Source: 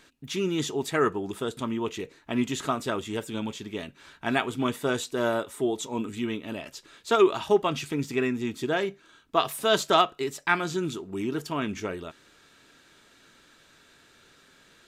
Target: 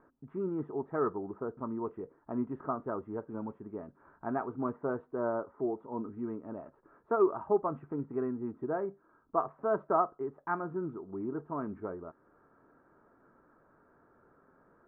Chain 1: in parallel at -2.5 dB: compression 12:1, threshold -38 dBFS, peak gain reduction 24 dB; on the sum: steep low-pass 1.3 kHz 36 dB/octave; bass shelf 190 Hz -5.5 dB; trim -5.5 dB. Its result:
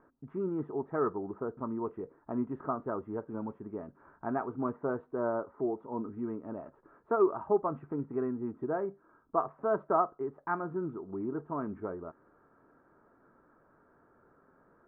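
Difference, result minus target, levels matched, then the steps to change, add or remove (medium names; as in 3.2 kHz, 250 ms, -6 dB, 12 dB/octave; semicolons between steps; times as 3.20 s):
compression: peak gain reduction -10 dB
change: compression 12:1, threshold -49 dBFS, peak gain reduction 34 dB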